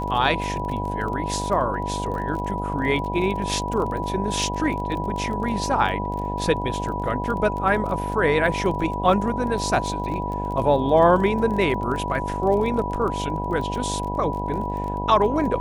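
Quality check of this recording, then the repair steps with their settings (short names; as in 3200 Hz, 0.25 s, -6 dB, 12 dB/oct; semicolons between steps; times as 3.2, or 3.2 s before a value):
buzz 50 Hz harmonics 18 -29 dBFS
crackle 28/s -30 dBFS
tone 980 Hz -28 dBFS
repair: de-click; de-hum 50 Hz, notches 18; notch 980 Hz, Q 30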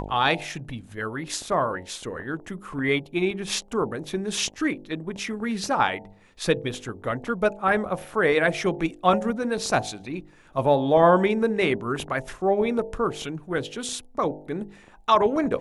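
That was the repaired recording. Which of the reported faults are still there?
none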